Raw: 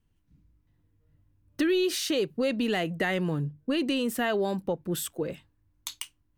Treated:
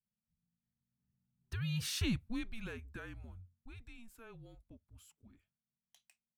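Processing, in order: Doppler pass-by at 2.03 s, 16 m/s, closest 3.5 m; frequency shift -230 Hz; trim -6.5 dB

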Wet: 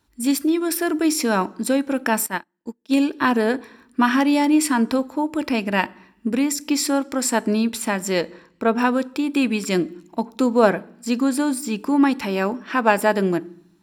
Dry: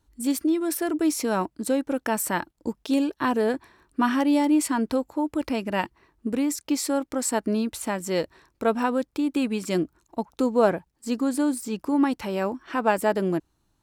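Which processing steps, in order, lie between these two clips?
8.21–8.78 s: treble shelf 3.2 kHz -9.5 dB; reverberation RT60 0.65 s, pre-delay 3 ms, DRR 17 dB; 2.26–2.97 s: upward expansion 2.5:1, over -41 dBFS; trim +5 dB

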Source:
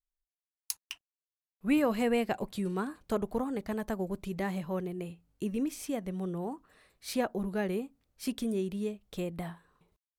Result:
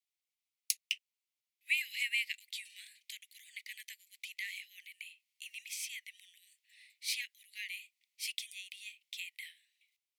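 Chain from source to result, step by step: steep high-pass 2 kHz 96 dB/octave; treble shelf 4 kHz -10 dB; trim +10.5 dB

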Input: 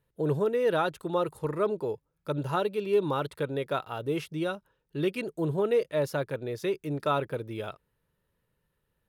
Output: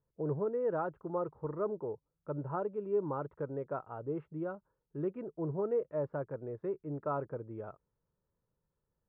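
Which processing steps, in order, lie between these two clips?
low-pass 1.3 kHz 24 dB/octave; trim -7 dB

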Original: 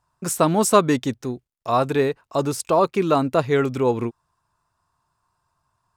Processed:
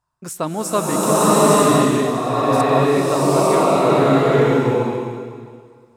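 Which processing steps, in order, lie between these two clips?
swelling reverb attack 920 ms, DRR -11 dB; trim -5.5 dB

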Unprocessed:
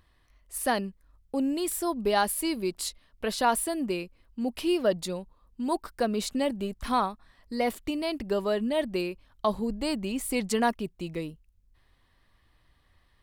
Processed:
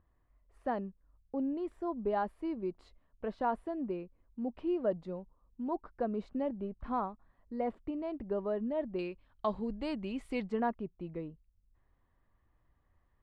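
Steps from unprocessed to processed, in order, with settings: low-pass 1.1 kHz 12 dB/octave, from 8.99 s 2.8 kHz, from 10.49 s 1.3 kHz; trim -6.5 dB

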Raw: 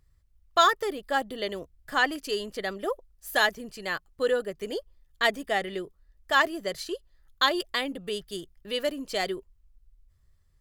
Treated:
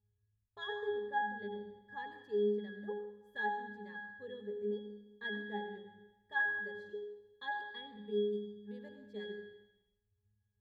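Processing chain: treble shelf 9.9 kHz +12 dB; pitch-class resonator G#, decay 0.73 s; on a send: reverberation RT60 1.1 s, pre-delay 76 ms, DRR 8.5 dB; on the sum: trim +7 dB

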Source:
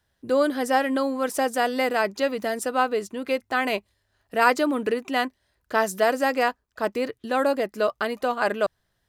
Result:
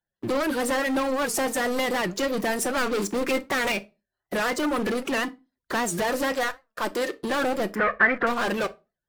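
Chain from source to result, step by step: coarse spectral quantiser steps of 30 dB; 2.77–3.72 s: waveshaping leveller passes 2; 6.32–7.17 s: high-pass 610 Hz 6 dB/octave; compression 2.5:1, threshold -27 dBFS, peak gain reduction 10 dB; waveshaping leveller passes 5; 7.75–8.27 s: resonant low-pass 1.8 kHz, resonance Q 5.7; reverberation RT60 0.25 s, pre-delay 6 ms, DRR 10.5 dB; warped record 78 rpm, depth 160 cents; trim -7.5 dB

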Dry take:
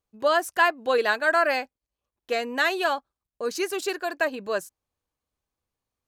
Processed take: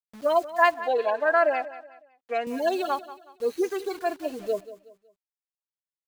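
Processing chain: harmonic-percussive separation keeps harmonic; dynamic bell 690 Hz, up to +5 dB, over -39 dBFS, Q 4.6; phaser 0.38 Hz, delay 3.7 ms, feedback 35%; word length cut 8-bit, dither none; 0.74–2.47 s: band-pass filter 870 Hz, Q 0.54; feedback delay 185 ms, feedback 35%, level -15.5 dB

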